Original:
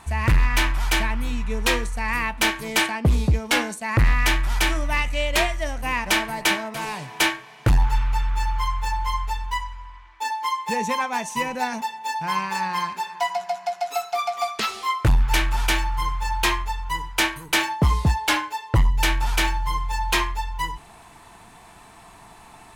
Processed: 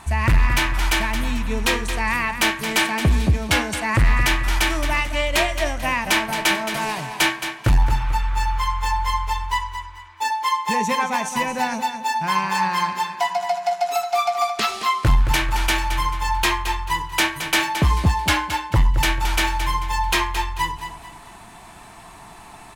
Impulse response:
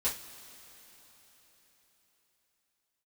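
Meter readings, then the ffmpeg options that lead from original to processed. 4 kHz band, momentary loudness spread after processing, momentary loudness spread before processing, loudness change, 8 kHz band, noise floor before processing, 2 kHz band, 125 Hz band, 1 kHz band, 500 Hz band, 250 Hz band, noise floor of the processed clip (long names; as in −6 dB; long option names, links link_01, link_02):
+2.5 dB, 6 LU, 8 LU, +2.5 dB, +2.5 dB, −47 dBFS, +2.5 dB, +1.5 dB, +3.5 dB, +2.5 dB, +2.5 dB, −43 dBFS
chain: -af "bandreject=frequency=470:width=13,alimiter=limit=-15dB:level=0:latency=1:release=232,aecho=1:1:220|440|660|880:0.335|0.111|0.0365|0.012,volume=4dB"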